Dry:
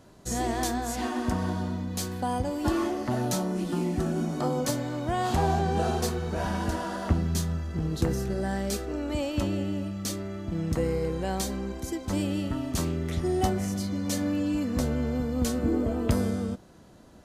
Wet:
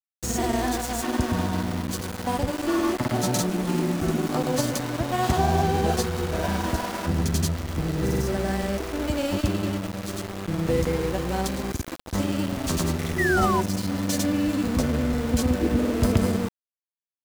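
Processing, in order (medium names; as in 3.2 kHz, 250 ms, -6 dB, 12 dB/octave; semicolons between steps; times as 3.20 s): granulator 100 ms, grains 20 per s, pitch spread up and down by 0 st; painted sound fall, 13.18–13.61 s, 940–2000 Hz -30 dBFS; small samples zeroed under -34 dBFS; trim +5 dB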